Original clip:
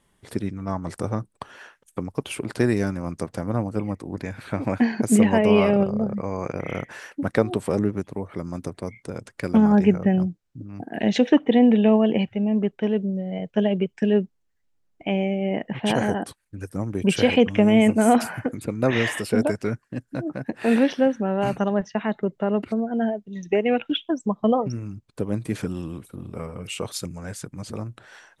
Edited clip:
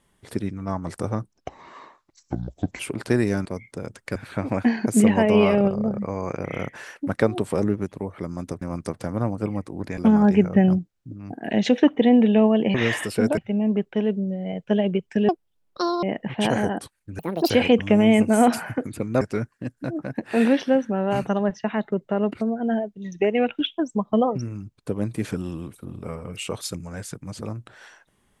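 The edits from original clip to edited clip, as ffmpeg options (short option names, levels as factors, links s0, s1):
-filter_complex "[0:a]asplit=16[s0][s1][s2][s3][s4][s5][s6][s7][s8][s9][s10][s11][s12][s13][s14][s15];[s0]atrim=end=1.314[s16];[s1]atrim=start=1.31:end=2.29,asetpts=PTS-STARTPTS,asetrate=29106,aresample=44100[s17];[s2]atrim=start=2.286:end=2.952[s18];[s3]atrim=start=8.768:end=9.472[s19];[s4]atrim=start=4.308:end=8.772[s20];[s5]atrim=start=2.948:end=4.312[s21];[s6]atrim=start=9.468:end=10.032[s22];[s7]atrim=start=10.028:end=10.282,asetpts=PTS-STARTPTS,volume=1.41[s23];[s8]atrim=start=10.278:end=12.242[s24];[s9]atrim=start=18.888:end=19.522[s25];[s10]atrim=start=12.238:end=14.154[s26];[s11]atrim=start=14.15:end=15.48,asetpts=PTS-STARTPTS,asetrate=78939,aresample=44100,atrim=end_sample=32767,asetpts=PTS-STARTPTS[s27];[s12]atrim=start=15.476:end=16.644[s28];[s13]atrim=start=16.64:end=17.18,asetpts=PTS-STARTPTS,asetrate=75852,aresample=44100,atrim=end_sample=13845,asetpts=PTS-STARTPTS[s29];[s14]atrim=start=17.176:end=18.892[s30];[s15]atrim=start=19.518[s31];[s16][s17]acrossfade=d=0.004:c1=hsin:c2=hsin[s32];[s32][s18]acrossfade=d=0.004:c1=hsin:c2=hsin[s33];[s33][s19]acrossfade=d=0.004:c1=hsin:c2=hsin[s34];[s34][s20]acrossfade=d=0.004:c1=hsin:c2=hsin[s35];[s35][s21]acrossfade=d=0.004:c1=hsin:c2=hsin[s36];[s36][s22]acrossfade=d=0.004:c1=hsin:c2=hsin[s37];[s37][s23]acrossfade=d=0.004:c1=hsin:c2=hsin[s38];[s38][s24]acrossfade=d=0.004:c1=hsin:c2=hsin[s39];[s39][s25]acrossfade=d=0.004:c1=hsin:c2=hsin[s40];[s40][s26]acrossfade=d=0.004:c1=hsin:c2=hsin[s41];[s41][s27]acrossfade=d=0.004:c1=hsin:c2=hsin[s42];[s42][s28]acrossfade=d=0.004:c1=hsin:c2=hsin[s43];[s43][s29]acrossfade=d=0.004:c1=hsin:c2=hsin[s44];[s44][s30]acrossfade=d=0.004:c1=hsin:c2=hsin[s45];[s45][s31]acrossfade=d=0.004:c1=hsin:c2=hsin"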